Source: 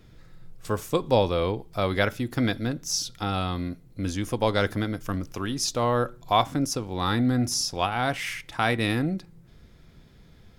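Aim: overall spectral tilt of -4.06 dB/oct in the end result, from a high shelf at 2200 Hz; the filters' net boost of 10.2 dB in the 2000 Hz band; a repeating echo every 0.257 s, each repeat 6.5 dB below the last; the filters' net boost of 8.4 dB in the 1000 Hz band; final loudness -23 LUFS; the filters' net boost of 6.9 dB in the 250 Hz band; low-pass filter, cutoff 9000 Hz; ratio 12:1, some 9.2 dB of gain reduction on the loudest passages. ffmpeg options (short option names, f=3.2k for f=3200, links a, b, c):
-af "lowpass=9k,equalizer=f=250:t=o:g=7.5,equalizer=f=1k:t=o:g=7.5,equalizer=f=2k:t=o:g=8.5,highshelf=f=2.2k:g=3.5,acompressor=threshold=-18dB:ratio=12,aecho=1:1:257|514|771|1028|1285|1542:0.473|0.222|0.105|0.0491|0.0231|0.0109,volume=0.5dB"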